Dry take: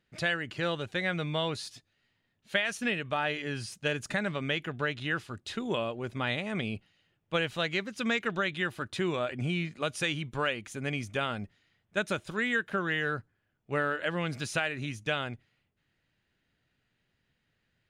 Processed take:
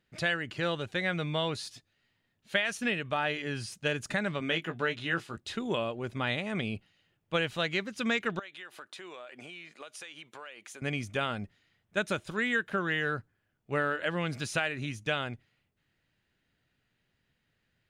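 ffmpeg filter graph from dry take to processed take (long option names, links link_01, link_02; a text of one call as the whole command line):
ffmpeg -i in.wav -filter_complex "[0:a]asettb=1/sr,asplit=3[link_01][link_02][link_03];[link_01]atrim=end=4.404[link_04];[link_02]atrim=start=4.4:end=5.37,asetpts=PTS-STARTPTS,afade=type=in:duration=0.004:curve=qsin,afade=type=out:start_time=0.966:duration=0.004:curve=qsin,highpass=140,asplit=2[link_05][link_06];[link_06]adelay=18,volume=-6.5dB[link_07];[link_05][link_07]amix=inputs=2:normalize=0,atrim=end_sample=42777[link_08];[link_03]atrim=start=5.366[link_09];[link_04][link_08]acrossfade=duration=0.004:curve1=hsin:curve2=qsin[link_10];[link_10][link_09]acrossfade=duration=0.004:curve1=qsin:curve2=hsin,asettb=1/sr,asplit=3[link_11][link_12][link_13];[link_11]atrim=end=8.394[link_14];[link_12]atrim=start=8.39:end=10.82,asetpts=PTS-STARTPTS,afade=type=in:duration=0.004:curve=qsin,afade=type=out:start_time=2.426:duration=0.004:curve=qsin,highpass=500,acompressor=threshold=-42dB:ratio=6:attack=3.2:release=140:knee=1:detection=peak[link_15];[link_13]atrim=start=10.816[link_16];[link_14][link_15]acrossfade=duration=0.004:curve1=hsin:curve2=qsin[link_17];[link_17][link_16]acrossfade=duration=0.004:curve1=qsin:curve2=hsin" out.wav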